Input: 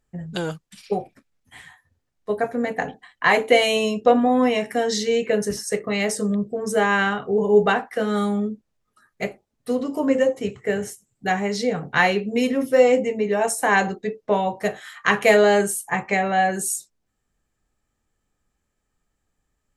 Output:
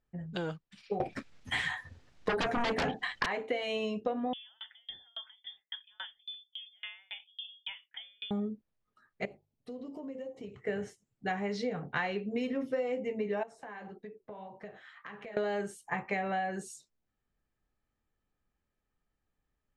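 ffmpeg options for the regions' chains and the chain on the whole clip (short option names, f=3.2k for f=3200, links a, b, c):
-filter_complex "[0:a]asettb=1/sr,asplit=3[a][b][c];[a]atrim=end=1.004[d];[b]atrim=start=1:end=3.26,asetpts=PTS-STARTPTS,afade=t=in:d=0.004:c=qsin,afade=t=out:st=2.256:d=0.004:c=qsin,highshelf=f=2.8k:g=8,aeval=exprs='0.501*sin(PI/2*8.91*val(0)/0.501)':c=same[e];[c]atrim=start=3.256[f];[d][e]acrossfade=d=0.004:c1=hsin:c2=qsin[g];[g][f]acrossfade=d=0.004:c1=qsin:c2=hsin,asettb=1/sr,asplit=3[h][i][j];[h]atrim=end=4.334[k];[i]atrim=start=4.33:end=8.31,asetpts=PTS-STARTPTS,afade=t=in:d=0.004:c=qsin,afade=t=out:st=3.976:d=0.004:c=qsin,acompressor=threshold=-25dB:ratio=5:attack=3.2:release=140:knee=1:detection=peak,lowpass=f=3.1k:t=q:w=0.5098,lowpass=f=3.1k:t=q:w=0.6013,lowpass=f=3.1k:t=q:w=0.9,lowpass=f=3.1k:t=q:w=2.563,afreqshift=-3700,aeval=exprs='val(0)*pow(10,-36*if(lt(mod(3.6*n/s,1),2*abs(3.6)/1000),1-mod(3.6*n/s,1)/(2*abs(3.6)/1000),(mod(3.6*n/s,1)-2*abs(3.6)/1000)/(1-2*abs(3.6)/1000))/20)':c=same[l];[j]atrim=start=8.306[m];[k][l]acrossfade=d=0.004:c1=hsin:c2=qsin[n];[n][m]acrossfade=d=0.004:c1=qsin:c2=hsin,asettb=1/sr,asplit=3[o][p][q];[o]atrim=end=9.254[r];[p]atrim=start=9.25:end=10.54,asetpts=PTS-STARTPTS,afade=t=in:d=0.004:c=qsin,afade=t=out:st=1.286:d=0.004:c=qsin,equalizer=f=1.5k:w=1.4:g=-10.5,bandreject=f=49.29:t=h:w=4,bandreject=f=98.58:t=h:w=4,bandreject=f=147.87:t=h:w=4,acompressor=threshold=-33dB:ratio=4:attack=3.2:release=140:knee=1:detection=peak[s];[q]atrim=start=10.536[t];[r][s]acrossfade=d=0.004:c1=hsin:c2=qsin[u];[u][t]acrossfade=d=0.004:c1=qsin:c2=hsin,asettb=1/sr,asplit=3[v][w][x];[v]atrim=end=13.434[y];[w]atrim=start=13.43:end=15.37,asetpts=PTS-STARTPTS,afade=t=in:d=0.004:c=qsin,afade=t=out:st=1.936:d=0.004:c=qsin,lowpass=f=3.1k:p=1,acompressor=threshold=-30dB:ratio=10:attack=3.2:release=140:knee=1:detection=peak,flanger=delay=4.5:depth=9.3:regen=-42:speed=1.7:shape=sinusoidal[z];[x]atrim=start=15.366[aa];[y][z]acrossfade=d=0.004:c1=hsin:c2=qsin[ab];[ab][aa]acrossfade=d=0.004:c1=qsin:c2=hsin,lowpass=3.9k,acompressor=threshold=-21dB:ratio=12,volume=-8dB"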